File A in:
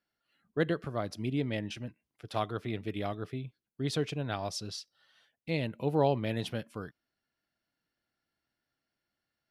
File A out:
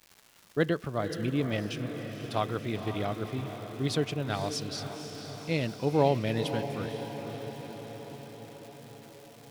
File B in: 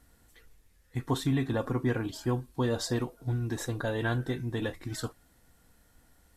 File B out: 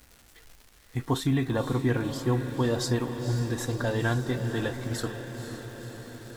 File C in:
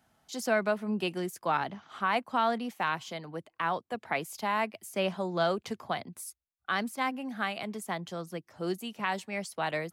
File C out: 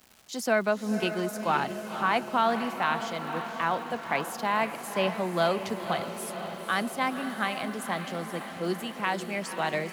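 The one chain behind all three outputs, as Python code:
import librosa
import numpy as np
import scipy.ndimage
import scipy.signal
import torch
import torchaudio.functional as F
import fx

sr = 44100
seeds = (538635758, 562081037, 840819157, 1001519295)

y = fx.dmg_crackle(x, sr, seeds[0], per_s=420.0, level_db=-45.0)
y = fx.echo_diffused(y, sr, ms=511, feedback_pct=67, wet_db=-9.0)
y = y * librosa.db_to_amplitude(2.5)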